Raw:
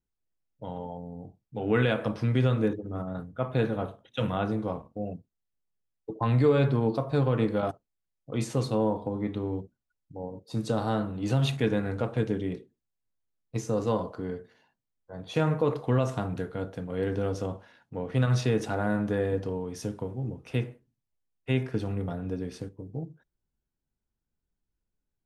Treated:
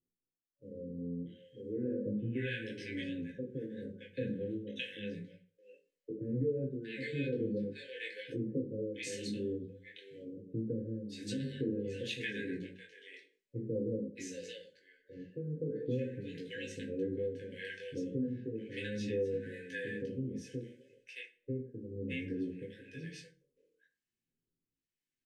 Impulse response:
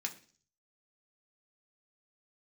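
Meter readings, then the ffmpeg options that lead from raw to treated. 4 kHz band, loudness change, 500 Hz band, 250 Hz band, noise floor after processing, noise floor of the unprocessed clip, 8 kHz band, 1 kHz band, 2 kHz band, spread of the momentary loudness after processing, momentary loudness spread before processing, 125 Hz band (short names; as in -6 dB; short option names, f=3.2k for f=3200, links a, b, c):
-5.5 dB, -10.0 dB, -9.5 dB, -8.0 dB, under -85 dBFS, -85 dBFS, -6.0 dB, under -40 dB, -5.5 dB, 13 LU, 15 LU, -14.0 dB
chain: -filter_complex "[1:a]atrim=start_sample=2205,asetrate=52920,aresample=44100[a];[0:a][a]afir=irnorm=-1:irlink=0,flanger=delay=17:depth=6.1:speed=0.37,tremolo=f=0.94:d=0.78,highshelf=f=7.1k:g=-11.5,acrossover=split=780[b][c];[c]adelay=620[d];[b][d]amix=inputs=2:normalize=0,acompressor=threshold=-46dB:ratio=2,afftfilt=real='re*(1-between(b*sr/4096,570,1500))':imag='im*(1-between(b*sr/4096,570,1500))':win_size=4096:overlap=0.75,volume=8dB"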